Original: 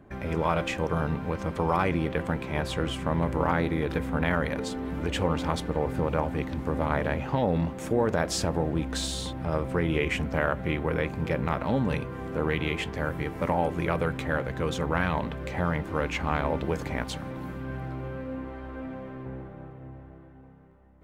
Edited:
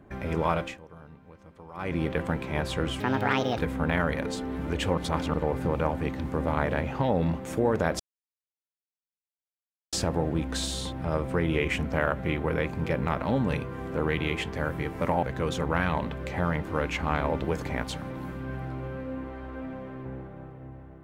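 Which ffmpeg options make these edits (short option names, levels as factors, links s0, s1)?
-filter_complex "[0:a]asplit=9[s0][s1][s2][s3][s4][s5][s6][s7][s8];[s0]atrim=end=0.8,asetpts=PTS-STARTPTS,afade=t=out:st=0.52:d=0.28:silence=0.0944061[s9];[s1]atrim=start=0.8:end=1.74,asetpts=PTS-STARTPTS,volume=0.0944[s10];[s2]atrim=start=1.74:end=3.004,asetpts=PTS-STARTPTS,afade=t=in:d=0.28:silence=0.0944061[s11];[s3]atrim=start=3:end=3.91,asetpts=PTS-STARTPTS,asetrate=69678,aresample=44100,atrim=end_sample=25399,asetpts=PTS-STARTPTS[s12];[s4]atrim=start=3.906:end=5.312[s13];[s5]atrim=start=5.308:end=5.672,asetpts=PTS-STARTPTS,areverse[s14];[s6]atrim=start=5.668:end=8.33,asetpts=PTS-STARTPTS,afade=t=out:st=2.658:d=0.004:c=hsin,apad=pad_dur=1.93[s15];[s7]atrim=start=8.33:end=13.632,asetpts=PTS-STARTPTS,afade=t=in:d=0.004:c=hsin[s16];[s8]atrim=start=14.428[s17];[s9][s10][s11]concat=n=3:v=0:a=1[s18];[s18][s12]acrossfade=d=0.004:c1=hsin:c2=hsin[s19];[s19][s13]acrossfade=d=0.004:c1=hsin:c2=hsin[s20];[s20][s14]acrossfade=d=0.004:c1=hsin:c2=hsin[s21];[s15][s16]concat=n=2:v=0:a=1[s22];[s21][s22]acrossfade=d=0.004:c1=hsin:c2=hsin[s23];[s23][s17]acrossfade=d=0.004:c1=hsin:c2=hsin"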